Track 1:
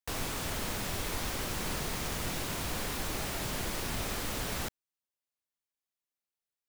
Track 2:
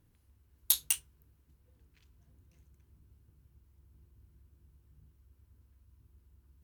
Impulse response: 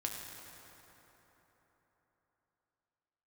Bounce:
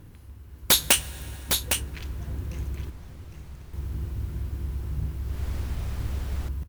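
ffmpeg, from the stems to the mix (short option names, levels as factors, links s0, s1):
-filter_complex "[0:a]acrossover=split=150[s0][s1];[s1]acompressor=threshold=0.00316:ratio=2.5[s2];[s0][s2]amix=inputs=2:normalize=0,adelay=1800,volume=0.531,afade=t=in:st=5.22:d=0.25:silence=0.266073[s3];[1:a]aeval=exprs='0.335*sin(PI/2*6.31*val(0)/0.335)':c=same,volume=1,asplit=3[s4][s5][s6];[s4]atrim=end=2.9,asetpts=PTS-STARTPTS,afade=t=out:st=2.896:d=0.004:c=hsin[s7];[s5]atrim=start=2.9:end=3.73,asetpts=PTS-STARTPTS,volume=0[s8];[s6]atrim=start=3.73,asetpts=PTS-STARTPTS,afade=t=in:d=0.004:c=hsin[s9];[s7][s8][s9]concat=n=3:v=0:a=1,asplit=3[s10][s11][s12];[s11]volume=0.178[s13];[s12]volume=0.335[s14];[2:a]atrim=start_sample=2205[s15];[s13][s15]afir=irnorm=-1:irlink=0[s16];[s14]aecho=0:1:808:1[s17];[s3][s10][s16][s17]amix=inputs=4:normalize=0,highshelf=f=3500:g=-6.5,dynaudnorm=f=330:g=7:m=2.82"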